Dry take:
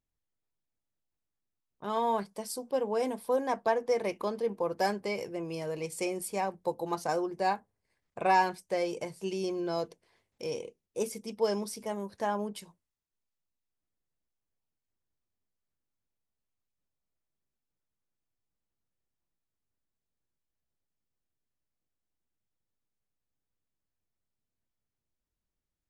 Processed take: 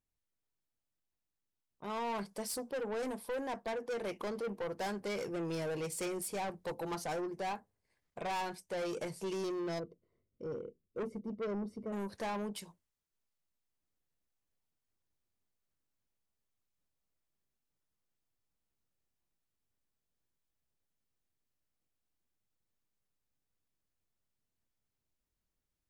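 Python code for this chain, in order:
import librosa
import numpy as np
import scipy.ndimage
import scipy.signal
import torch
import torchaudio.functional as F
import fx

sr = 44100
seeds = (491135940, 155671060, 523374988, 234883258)

y = fx.moving_average(x, sr, points=53, at=(9.78, 11.92), fade=0.02)
y = fx.rider(y, sr, range_db=5, speed_s=0.5)
y = 10.0 ** (-34.0 / 20.0) * np.tanh(y / 10.0 ** (-34.0 / 20.0))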